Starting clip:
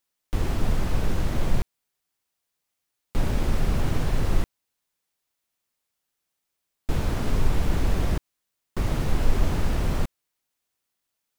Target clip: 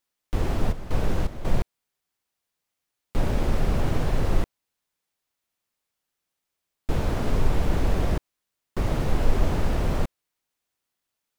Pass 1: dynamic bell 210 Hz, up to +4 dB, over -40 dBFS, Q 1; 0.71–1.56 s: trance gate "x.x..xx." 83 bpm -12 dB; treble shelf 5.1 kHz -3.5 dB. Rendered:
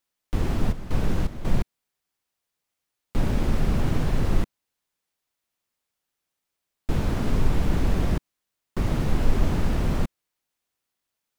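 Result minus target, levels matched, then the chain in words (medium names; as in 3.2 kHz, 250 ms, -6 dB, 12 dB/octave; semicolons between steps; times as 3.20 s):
500 Hz band -3.0 dB
dynamic bell 570 Hz, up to +4 dB, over -40 dBFS, Q 1; 0.71–1.56 s: trance gate "x.x..xx." 83 bpm -12 dB; treble shelf 5.1 kHz -3.5 dB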